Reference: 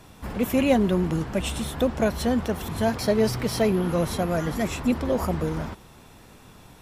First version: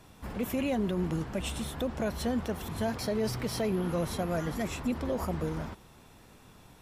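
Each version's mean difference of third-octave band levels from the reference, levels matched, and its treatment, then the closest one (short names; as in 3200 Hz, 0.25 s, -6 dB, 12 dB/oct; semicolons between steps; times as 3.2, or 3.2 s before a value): 1.5 dB: limiter -16 dBFS, peak gain reduction 7.5 dB; gain -6 dB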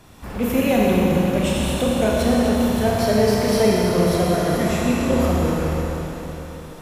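5.5 dB: Schroeder reverb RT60 4 s, combs from 26 ms, DRR -4.5 dB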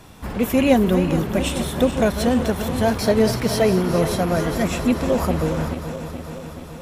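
3.0 dB: regenerating reverse delay 0.213 s, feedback 80%, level -11 dB; gain +4 dB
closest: first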